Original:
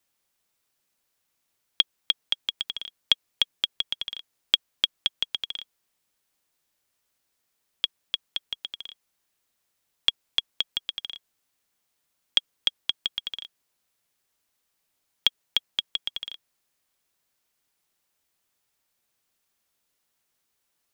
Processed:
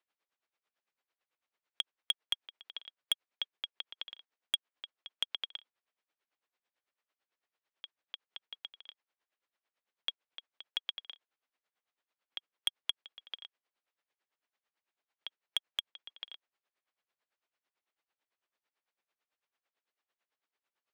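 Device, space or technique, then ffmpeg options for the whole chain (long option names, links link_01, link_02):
helicopter radio: -af "highpass=390,lowpass=2900,aeval=exprs='val(0)*pow(10,-19*(0.5-0.5*cos(2*PI*9*n/s))/20)':channel_layout=same,asoftclip=type=hard:threshold=-19dB,volume=-1dB"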